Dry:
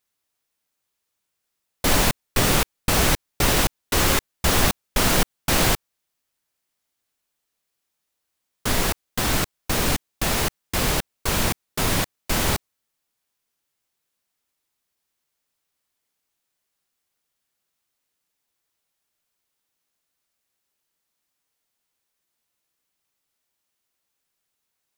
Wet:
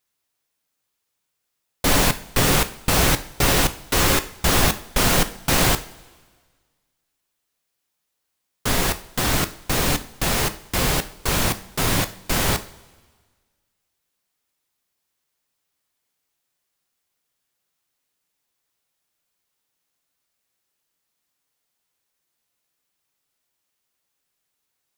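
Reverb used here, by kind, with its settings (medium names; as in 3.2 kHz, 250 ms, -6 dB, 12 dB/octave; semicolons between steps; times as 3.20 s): two-slope reverb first 0.41 s, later 1.6 s, from -16 dB, DRR 9.5 dB; trim +1 dB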